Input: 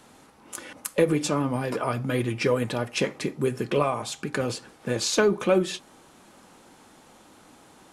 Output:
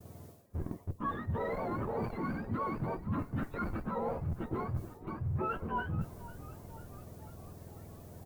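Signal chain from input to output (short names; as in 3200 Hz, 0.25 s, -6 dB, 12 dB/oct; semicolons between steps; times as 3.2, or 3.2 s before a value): spectrum mirrored in octaves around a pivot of 760 Hz; in parallel at -5 dB: Schmitt trigger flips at -32 dBFS; on the sum: LPF 1000 Hz 12 dB/oct; added noise blue -65 dBFS; reverse; compressor 6:1, threshold -36 dBFS, peak gain reduction 20 dB; reverse; expander -51 dBFS; frequency-shifting echo 0.475 s, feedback 64%, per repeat -42 Hz, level -16.5 dB; speed mistake 25 fps video run at 24 fps; gain +2.5 dB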